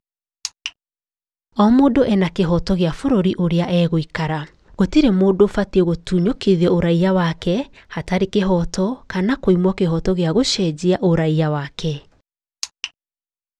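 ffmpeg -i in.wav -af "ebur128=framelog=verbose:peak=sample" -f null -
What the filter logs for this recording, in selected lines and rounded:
Integrated loudness:
  I:         -18.1 LUFS
  Threshold: -28.7 LUFS
Loudness range:
  LRA:         2.5 LU
  Threshold: -38.4 LUFS
  LRA low:   -19.7 LUFS
  LRA high:  -17.2 LUFS
Sample peak:
  Peak:       -1.9 dBFS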